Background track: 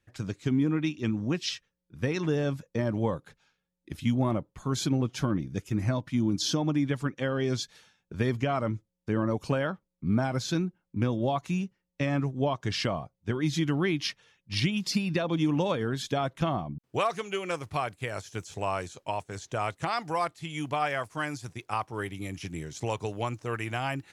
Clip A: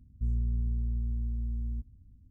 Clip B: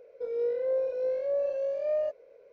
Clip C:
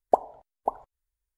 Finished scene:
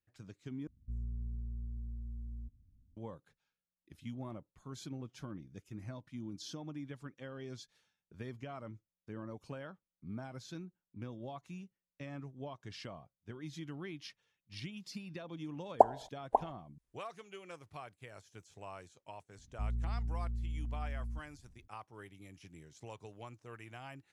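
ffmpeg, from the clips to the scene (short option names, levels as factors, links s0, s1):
-filter_complex "[1:a]asplit=2[s0][s1];[0:a]volume=0.133[s2];[3:a]aresample=22050,aresample=44100[s3];[s2]asplit=2[s4][s5];[s4]atrim=end=0.674[s6];[s0]atrim=end=2.3,asetpts=PTS-STARTPTS,volume=0.299[s7];[s5]atrim=start=2.966[s8];[s3]atrim=end=1.37,asetpts=PTS-STARTPTS,volume=0.841,afade=t=in:d=0.004:c=hsin,afade=t=out:st=1.366:d=0.004:c=hsin,adelay=15670[s9];[s1]atrim=end=2.3,asetpts=PTS-STARTPTS,volume=0.473,afade=t=in:d=0.004:c=hsin,afade=t=out:st=2.296:d=0.004:c=hsin,adelay=19380[s10];[s6][s7]acrossfade=d=0.004:c1=hsin:c2=hsin[s11];[s11][s8]acrossfade=d=0.004:c1=hsin:c2=hsin[s12];[s12][s9][s10]amix=inputs=3:normalize=0"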